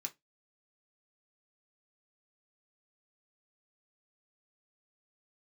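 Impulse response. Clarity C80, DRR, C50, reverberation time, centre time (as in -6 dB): 33.5 dB, 2.5 dB, 21.5 dB, 0.15 s, 5 ms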